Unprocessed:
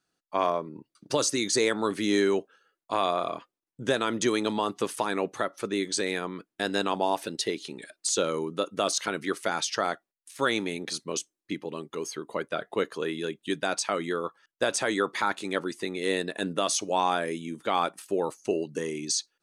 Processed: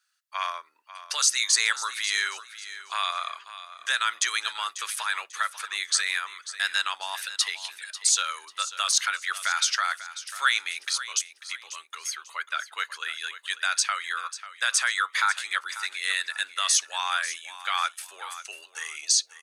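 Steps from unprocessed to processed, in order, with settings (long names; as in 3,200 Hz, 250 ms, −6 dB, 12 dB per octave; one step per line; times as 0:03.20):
sub-octave generator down 2 octaves, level −3 dB
Chebyshev high-pass filter 1,400 Hz, order 3
repeating echo 543 ms, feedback 29%, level −14 dB
level +7 dB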